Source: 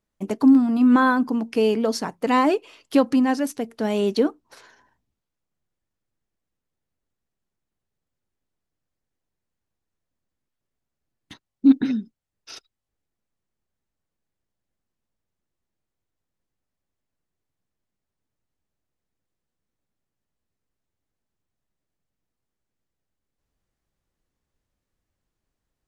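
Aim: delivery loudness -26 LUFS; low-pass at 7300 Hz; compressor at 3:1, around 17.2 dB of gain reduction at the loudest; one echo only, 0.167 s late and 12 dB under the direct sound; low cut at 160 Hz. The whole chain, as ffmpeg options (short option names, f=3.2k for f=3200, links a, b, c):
-af "highpass=160,lowpass=7.3k,acompressor=threshold=-35dB:ratio=3,aecho=1:1:167:0.251,volume=9dB"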